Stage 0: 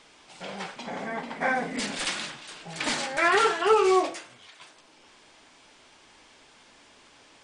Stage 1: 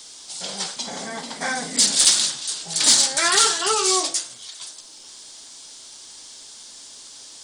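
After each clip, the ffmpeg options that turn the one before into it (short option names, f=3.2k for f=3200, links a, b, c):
-filter_complex "[0:a]acrossover=split=320|780[a][b][c];[b]acompressor=threshold=-37dB:ratio=6[d];[c]aexciter=amount=5.4:drive=8.4:freq=3.6k[e];[a][d][e]amix=inputs=3:normalize=0,volume=1dB"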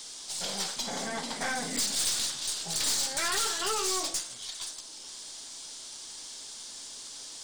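-af "acompressor=threshold=-28dB:ratio=2,aeval=exprs='(tanh(15.8*val(0)+0.4)-tanh(0.4))/15.8':c=same"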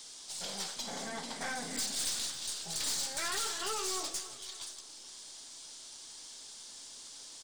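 -af "aecho=1:1:281|562|843|1124:0.178|0.0818|0.0376|0.0173,volume=-6dB"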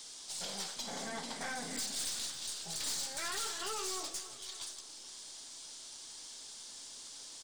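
-af "alimiter=level_in=5.5dB:limit=-24dB:level=0:latency=1:release=435,volume=-5.5dB"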